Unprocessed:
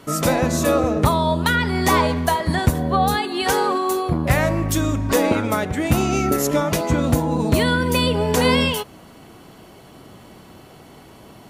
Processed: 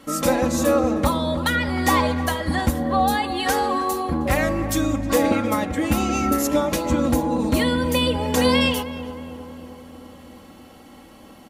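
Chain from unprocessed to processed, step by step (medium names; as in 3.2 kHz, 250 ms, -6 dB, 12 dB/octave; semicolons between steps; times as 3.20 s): comb 3.7 ms, depth 70%; filtered feedback delay 313 ms, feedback 65%, low-pass 1.7 kHz, level -12.5 dB; trim -3.5 dB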